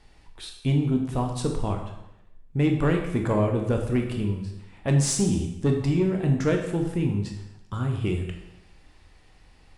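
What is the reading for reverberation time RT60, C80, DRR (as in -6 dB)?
0.85 s, 8.5 dB, 2.0 dB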